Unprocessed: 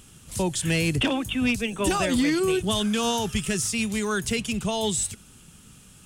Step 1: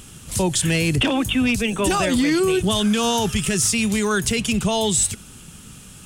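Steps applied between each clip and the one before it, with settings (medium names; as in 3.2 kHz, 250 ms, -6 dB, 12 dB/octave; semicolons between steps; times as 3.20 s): peak limiter -20.5 dBFS, peak gain reduction 6 dB; trim +8.5 dB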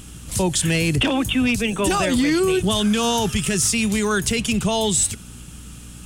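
hum 60 Hz, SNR 20 dB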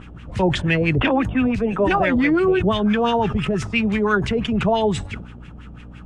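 LFO low-pass sine 5.9 Hz 570–2400 Hz; decay stretcher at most 85 dB/s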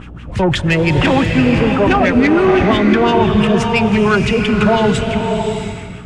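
saturation -13.5 dBFS, distortion -18 dB; swelling reverb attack 660 ms, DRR 3 dB; trim +6.5 dB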